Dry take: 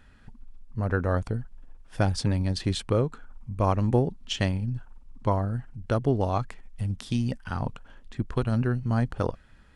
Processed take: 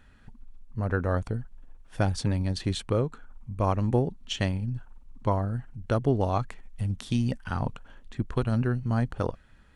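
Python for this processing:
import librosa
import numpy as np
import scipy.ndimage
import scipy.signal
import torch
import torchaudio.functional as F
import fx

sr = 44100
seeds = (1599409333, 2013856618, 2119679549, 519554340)

p1 = fx.rider(x, sr, range_db=10, speed_s=2.0)
p2 = x + F.gain(torch.from_numpy(p1), -1.0).numpy()
p3 = fx.notch(p2, sr, hz=5000.0, q=12.0)
y = F.gain(torch.from_numpy(p3), -6.5).numpy()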